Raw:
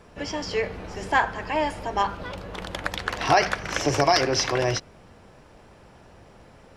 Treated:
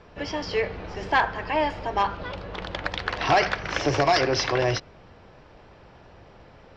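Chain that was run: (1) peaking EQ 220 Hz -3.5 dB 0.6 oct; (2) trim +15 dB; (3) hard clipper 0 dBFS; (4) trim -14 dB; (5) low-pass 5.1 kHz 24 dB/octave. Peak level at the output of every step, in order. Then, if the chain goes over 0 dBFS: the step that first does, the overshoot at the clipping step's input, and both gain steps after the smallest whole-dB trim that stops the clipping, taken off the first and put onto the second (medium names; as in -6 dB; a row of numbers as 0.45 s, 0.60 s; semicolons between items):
-7.0 dBFS, +8.0 dBFS, 0.0 dBFS, -14.0 dBFS, -12.0 dBFS; step 2, 8.0 dB; step 2 +7 dB, step 4 -6 dB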